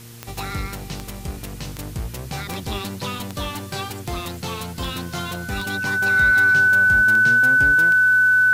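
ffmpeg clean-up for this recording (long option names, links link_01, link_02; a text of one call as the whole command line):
ffmpeg -i in.wav -af "adeclick=threshold=4,bandreject=frequency=116.7:width_type=h:width=4,bandreject=frequency=233.4:width_type=h:width=4,bandreject=frequency=350.1:width_type=h:width=4,bandreject=frequency=466.8:width_type=h:width=4,bandreject=frequency=1500:width=30,afwtdn=0.0063" out.wav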